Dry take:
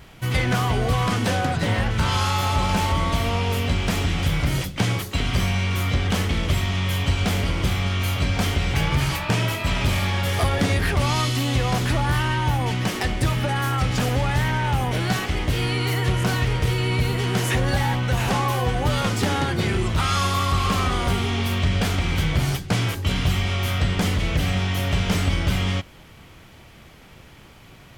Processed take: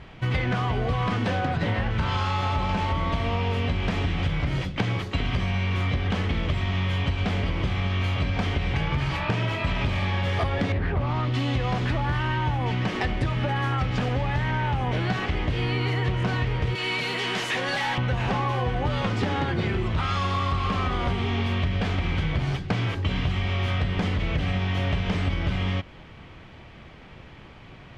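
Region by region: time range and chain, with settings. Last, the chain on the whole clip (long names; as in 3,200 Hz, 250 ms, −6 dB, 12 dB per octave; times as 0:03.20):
0:10.72–0:11.34: low-pass filter 1,200 Hz 6 dB per octave + highs frequency-modulated by the lows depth 0.18 ms
0:16.75–0:17.98: high-pass filter 140 Hz 24 dB per octave + spectral tilt +3.5 dB per octave + hard clipping −22 dBFS
whole clip: low-pass filter 3,200 Hz 12 dB per octave; notch filter 1,400 Hz, Q 28; downward compressor, threshold −23 dBFS; level +1.5 dB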